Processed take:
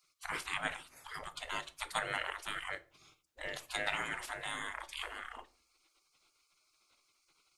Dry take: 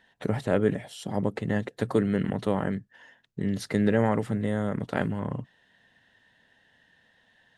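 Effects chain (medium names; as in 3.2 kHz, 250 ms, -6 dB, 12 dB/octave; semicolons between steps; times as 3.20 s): spectral gate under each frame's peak -25 dB weak; simulated room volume 310 m³, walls furnished, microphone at 0.45 m; trim +7 dB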